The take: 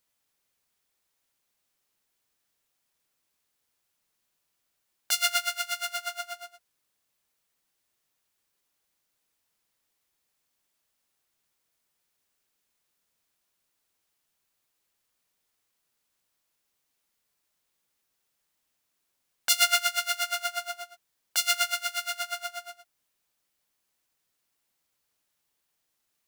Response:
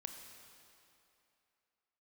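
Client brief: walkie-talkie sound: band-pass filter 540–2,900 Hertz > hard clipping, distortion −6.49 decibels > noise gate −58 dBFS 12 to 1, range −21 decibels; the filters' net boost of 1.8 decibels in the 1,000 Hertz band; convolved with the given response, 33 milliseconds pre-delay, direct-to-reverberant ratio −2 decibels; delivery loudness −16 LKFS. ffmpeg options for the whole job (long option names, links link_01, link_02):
-filter_complex "[0:a]equalizer=frequency=1000:width_type=o:gain=4.5,asplit=2[link_01][link_02];[1:a]atrim=start_sample=2205,adelay=33[link_03];[link_02][link_03]afir=irnorm=-1:irlink=0,volume=5.5dB[link_04];[link_01][link_04]amix=inputs=2:normalize=0,highpass=540,lowpass=2900,asoftclip=type=hard:threshold=-25dB,agate=range=-21dB:threshold=-58dB:ratio=12,volume=12.5dB"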